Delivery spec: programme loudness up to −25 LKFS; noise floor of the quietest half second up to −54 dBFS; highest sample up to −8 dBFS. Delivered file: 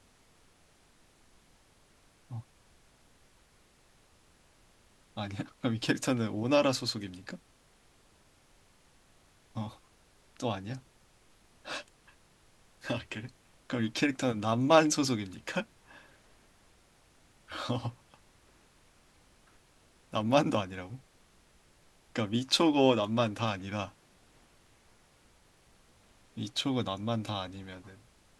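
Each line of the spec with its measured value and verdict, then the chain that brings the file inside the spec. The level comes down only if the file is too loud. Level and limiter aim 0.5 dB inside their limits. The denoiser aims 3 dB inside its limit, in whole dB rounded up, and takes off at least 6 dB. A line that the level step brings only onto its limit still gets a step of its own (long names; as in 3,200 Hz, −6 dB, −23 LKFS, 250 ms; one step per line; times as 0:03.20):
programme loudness −31.5 LKFS: in spec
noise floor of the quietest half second −64 dBFS: in spec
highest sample −7.5 dBFS: out of spec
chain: brickwall limiter −8.5 dBFS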